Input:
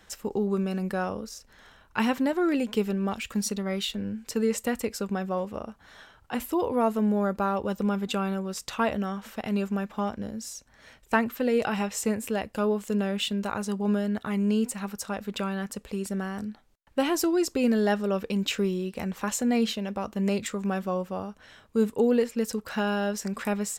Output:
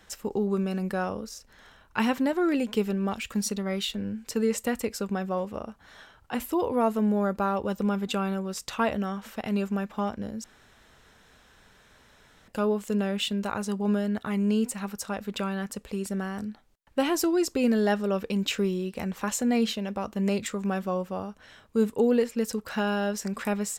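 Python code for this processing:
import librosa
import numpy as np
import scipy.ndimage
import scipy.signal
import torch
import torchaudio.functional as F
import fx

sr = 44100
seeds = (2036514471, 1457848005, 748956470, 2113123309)

y = fx.edit(x, sr, fx.room_tone_fill(start_s=10.44, length_s=2.04), tone=tone)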